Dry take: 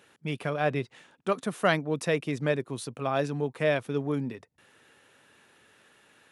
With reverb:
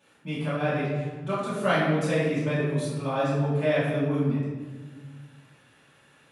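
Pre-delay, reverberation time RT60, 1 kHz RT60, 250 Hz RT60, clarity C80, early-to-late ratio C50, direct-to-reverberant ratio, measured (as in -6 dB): 3 ms, 1.5 s, 1.3 s, 2.2 s, 2.5 dB, -0.5 dB, -12.5 dB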